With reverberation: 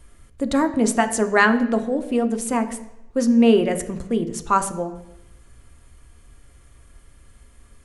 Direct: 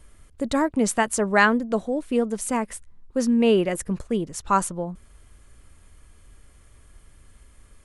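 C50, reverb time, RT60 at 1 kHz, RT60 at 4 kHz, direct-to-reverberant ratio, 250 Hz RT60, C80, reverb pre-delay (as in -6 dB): 12.5 dB, 0.85 s, 0.85 s, 0.90 s, 7.0 dB, 0.80 s, 15.0 dB, 3 ms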